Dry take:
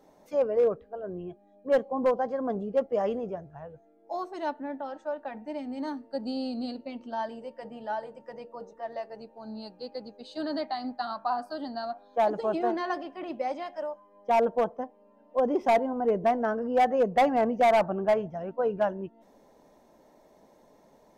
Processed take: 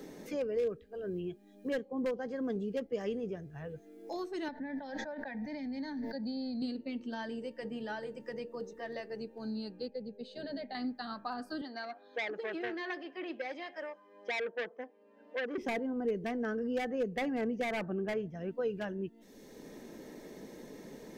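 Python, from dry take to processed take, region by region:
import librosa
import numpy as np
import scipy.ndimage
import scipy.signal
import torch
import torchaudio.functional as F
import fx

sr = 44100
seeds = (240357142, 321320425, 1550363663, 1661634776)

y = fx.chain(x, sr, fx.high_shelf(hz=6100.0, db=-9.5),
    fx.fixed_phaser(hz=1900.0, stages=8),
    fx.pre_swell(db_per_s=41.0), at=(4.48, 6.62))
y = fx.chain(y, sr, fx.lowpass(hz=1500.0, slope=6),
    fx.fixed_phaser(hz=310.0, stages=6), at=(9.88, 10.75))
y = fx.chain(y, sr, fx.bandpass_edges(low_hz=490.0, high_hz=4800.0),
    fx.transformer_sat(knee_hz=2000.0), at=(11.61, 15.58))
y = fx.band_shelf(y, sr, hz=800.0, db=-13.0, octaves=1.2)
y = fx.notch(y, sr, hz=1400.0, q=8.4)
y = fx.band_squash(y, sr, depth_pct=70)
y = y * 10.0 ** (-2.5 / 20.0)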